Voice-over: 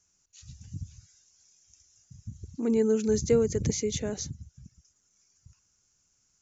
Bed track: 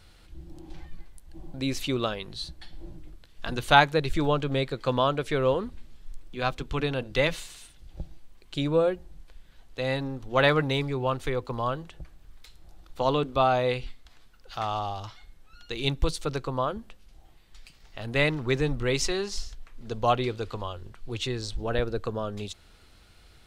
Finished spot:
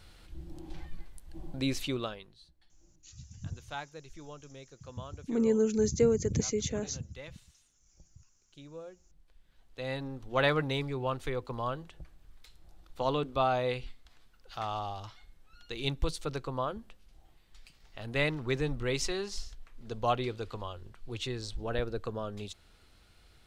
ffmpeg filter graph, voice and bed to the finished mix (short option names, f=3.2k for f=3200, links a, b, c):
-filter_complex "[0:a]adelay=2700,volume=-2dB[a];[1:a]volume=16.5dB,afade=t=out:st=1.53:d=0.83:silence=0.0794328,afade=t=in:st=8.92:d=1.35:silence=0.141254[b];[a][b]amix=inputs=2:normalize=0"